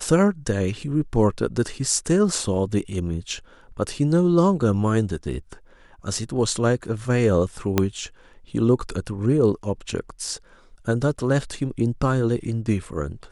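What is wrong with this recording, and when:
7.78 s: pop -4 dBFS

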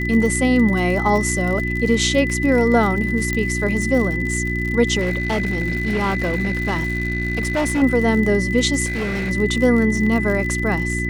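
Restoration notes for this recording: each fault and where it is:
crackle 74 per s -25 dBFS
hum 60 Hz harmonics 6 -24 dBFS
whine 2 kHz -24 dBFS
3.33 s: pop -9 dBFS
5.00–7.83 s: clipped -16 dBFS
8.85–9.31 s: clipped -20 dBFS

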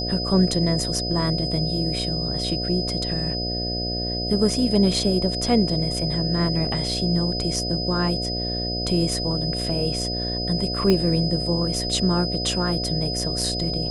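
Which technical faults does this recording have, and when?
buzz 60 Hz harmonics 12 -29 dBFS
whine 5 kHz -27 dBFS
10.90 s: pop -8 dBFS

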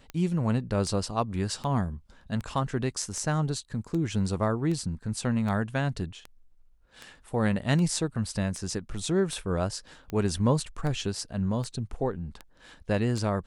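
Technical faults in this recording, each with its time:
tick 78 rpm -23 dBFS

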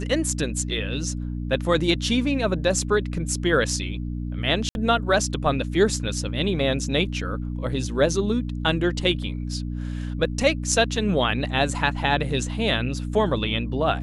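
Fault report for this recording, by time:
hum 60 Hz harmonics 5 -29 dBFS
4.69–4.75 s: dropout 61 ms

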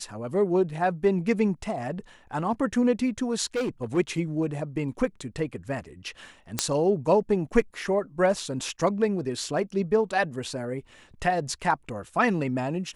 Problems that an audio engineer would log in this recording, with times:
3.55–3.98 s: clipped -23.5 dBFS
6.59 s: pop -6 dBFS

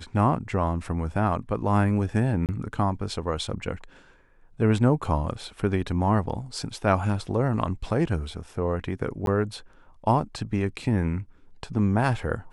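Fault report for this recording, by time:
2.46–2.49 s: dropout 28 ms
9.26–9.27 s: dropout 12 ms

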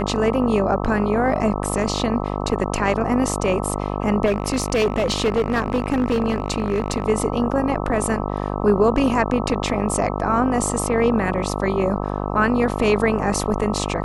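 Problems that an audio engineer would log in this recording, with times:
buzz 50 Hz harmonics 26 -25 dBFS
4.25–7.06 s: clipped -14.5 dBFS

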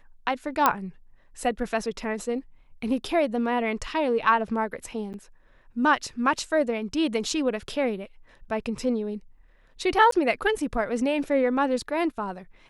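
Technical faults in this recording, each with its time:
0.66 s: pop -5 dBFS
5.13–5.14 s: dropout 9.2 ms
10.11–10.12 s: dropout

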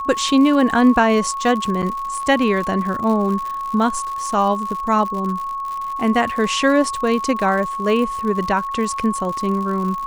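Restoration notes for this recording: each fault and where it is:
crackle 98 per s -26 dBFS
whine 1.1 kHz -23 dBFS
1.82–1.83 s: dropout 7.2 ms

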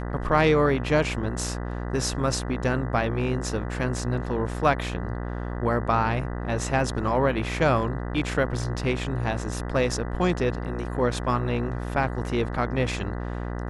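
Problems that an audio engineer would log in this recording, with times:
buzz 60 Hz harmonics 33 -31 dBFS

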